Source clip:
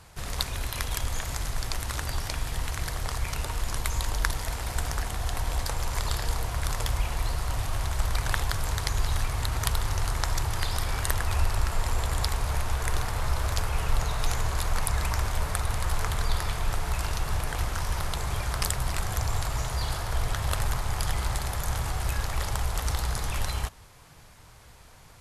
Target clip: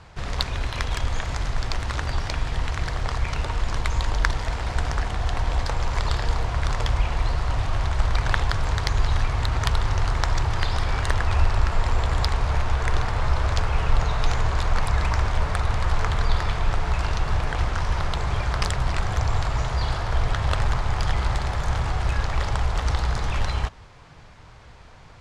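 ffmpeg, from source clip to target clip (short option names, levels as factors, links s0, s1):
-af "lowpass=8500,adynamicsmooth=sensitivity=0.5:basefreq=5000,volume=1.88"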